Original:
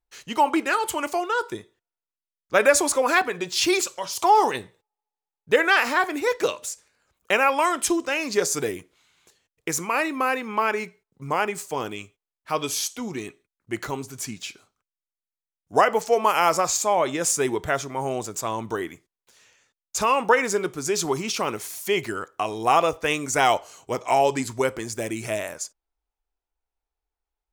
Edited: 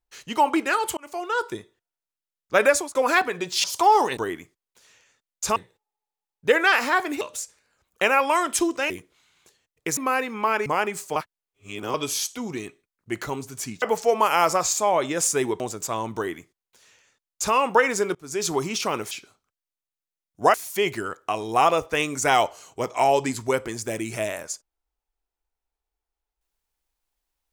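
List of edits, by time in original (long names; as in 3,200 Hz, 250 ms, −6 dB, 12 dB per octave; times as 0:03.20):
0:00.97–0:01.38: fade in
0:02.66–0:02.95: fade out
0:03.64–0:04.07: remove
0:06.25–0:06.50: remove
0:08.19–0:08.71: remove
0:09.78–0:10.11: remove
0:10.80–0:11.27: remove
0:11.77–0:12.55: reverse
0:14.43–0:15.86: move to 0:21.65
0:17.64–0:18.14: remove
0:18.69–0:20.08: duplicate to 0:04.60
0:20.69–0:21.02: fade in, from −24 dB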